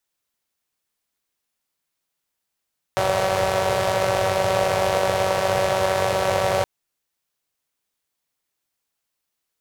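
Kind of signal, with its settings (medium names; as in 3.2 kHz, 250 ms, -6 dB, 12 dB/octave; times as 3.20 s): four-cylinder engine model, steady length 3.67 s, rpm 5700, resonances 110/560 Hz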